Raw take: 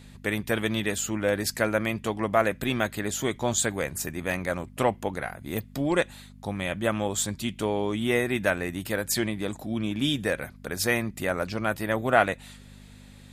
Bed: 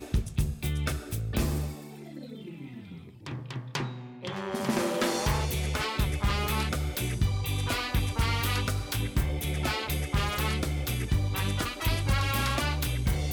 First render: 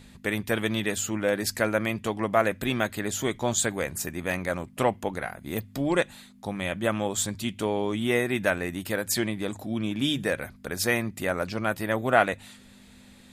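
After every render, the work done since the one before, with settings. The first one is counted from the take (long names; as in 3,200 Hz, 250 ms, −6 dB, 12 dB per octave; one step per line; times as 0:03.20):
hum removal 50 Hz, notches 3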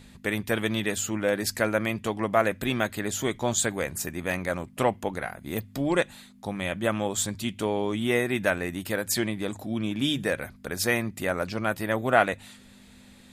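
no processing that can be heard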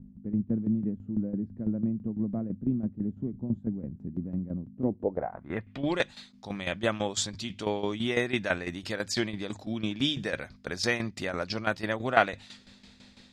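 low-pass filter sweep 220 Hz → 5,100 Hz, 0:04.77–0:06.00
shaped tremolo saw down 6 Hz, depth 75%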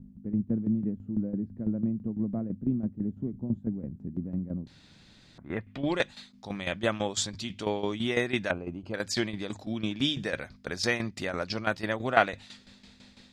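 0:04.67–0:05.38: fill with room tone
0:08.51–0:08.94: moving average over 24 samples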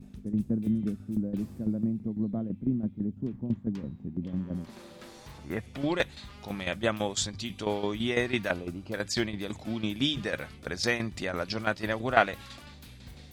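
mix in bed −21 dB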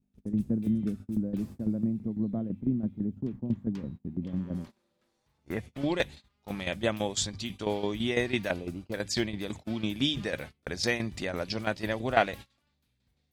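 noise gate −40 dBFS, range −27 dB
dynamic equaliser 1,300 Hz, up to −6 dB, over −47 dBFS, Q 2.1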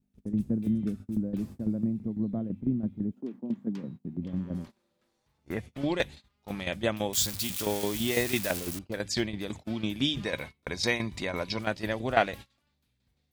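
0:03.11–0:04.17: high-pass filter 290 Hz → 100 Hz 24 dB per octave
0:07.13–0:08.79: spike at every zero crossing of −23.5 dBFS
0:10.25–0:11.59: hollow resonant body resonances 1,000/2,200/3,800 Hz, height 13 dB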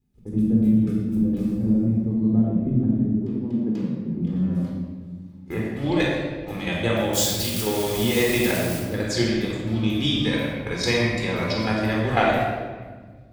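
rectangular room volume 1,600 cubic metres, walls mixed, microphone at 4 metres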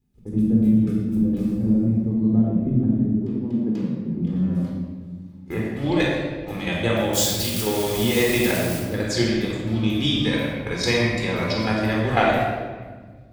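level +1 dB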